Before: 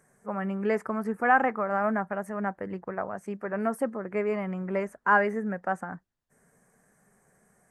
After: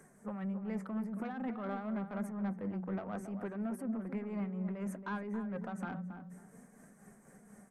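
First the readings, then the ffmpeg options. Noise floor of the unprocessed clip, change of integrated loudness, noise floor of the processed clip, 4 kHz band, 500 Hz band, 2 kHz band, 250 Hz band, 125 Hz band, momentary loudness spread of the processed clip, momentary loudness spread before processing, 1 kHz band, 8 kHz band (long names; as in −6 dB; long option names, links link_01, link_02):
−69 dBFS, −11.0 dB, −62 dBFS, can't be measured, −14.5 dB, −20.0 dB, −4.0 dB, −3.0 dB, 20 LU, 12 LU, −17.5 dB, −5.0 dB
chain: -filter_complex "[0:a]flanger=delay=2.4:depth=3.8:regen=69:speed=0.57:shape=triangular,equalizer=frequency=220:width_type=o:width=0.97:gain=10,bandreject=frequency=60:width_type=h:width=6,bandreject=frequency=120:width_type=h:width=6,bandreject=frequency=180:width_type=h:width=6,bandreject=frequency=240:width_type=h:width=6,acrossover=split=190[link_01][link_02];[link_02]acompressor=threshold=-31dB:ratio=6[link_03];[link_01][link_03]amix=inputs=2:normalize=0,alimiter=level_in=6.5dB:limit=-24dB:level=0:latency=1:release=62,volume=-6.5dB,areverse,acompressor=threshold=-41dB:ratio=6,areverse,asoftclip=type=tanh:threshold=-39.5dB,tremolo=f=4.1:d=0.46,bandreject=frequency=1700:width=24,asplit=2[link_04][link_05];[link_05]adelay=275,lowpass=frequency=1400:poles=1,volume=-8dB,asplit=2[link_06][link_07];[link_07]adelay=275,lowpass=frequency=1400:poles=1,volume=0.27,asplit=2[link_08][link_09];[link_09]adelay=275,lowpass=frequency=1400:poles=1,volume=0.27[link_10];[link_04][link_06][link_08][link_10]amix=inputs=4:normalize=0,volume=8.5dB"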